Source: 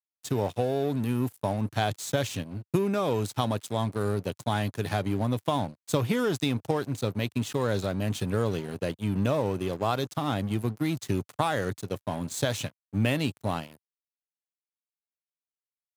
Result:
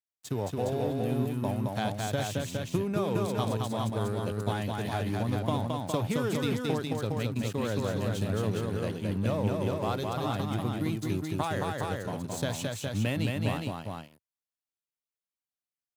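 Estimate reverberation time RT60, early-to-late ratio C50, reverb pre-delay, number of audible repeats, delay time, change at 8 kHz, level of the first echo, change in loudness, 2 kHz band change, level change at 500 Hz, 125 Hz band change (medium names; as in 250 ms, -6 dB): no reverb, no reverb, no reverb, 2, 219 ms, -2.5 dB, -3.0 dB, -2.0 dB, -2.5 dB, -2.5 dB, -0.5 dB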